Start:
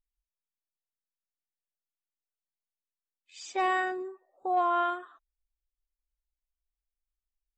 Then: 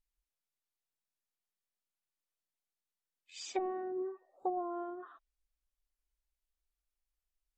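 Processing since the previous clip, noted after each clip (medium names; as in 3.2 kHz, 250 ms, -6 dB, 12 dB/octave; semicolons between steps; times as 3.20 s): low-pass that closes with the level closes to 360 Hz, closed at -27.5 dBFS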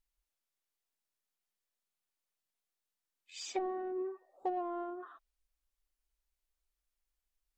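peaking EQ 120 Hz -7.5 dB 1 oct; in parallel at -7 dB: saturation -39 dBFS, distortion -8 dB; on the sum: trim -1.5 dB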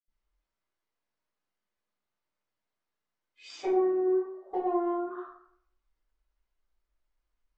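reverberation RT60 0.65 s, pre-delay 76 ms; trim +7 dB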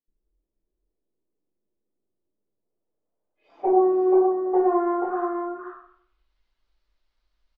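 low-pass sweep 380 Hz -> 4.4 kHz, 2.42–6.41 s; on a send: delay 482 ms -4.5 dB; on the sum: trim +5 dB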